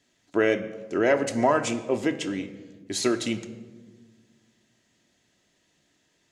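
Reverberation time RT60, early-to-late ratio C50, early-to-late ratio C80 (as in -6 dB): 1.4 s, 12.5 dB, 14.0 dB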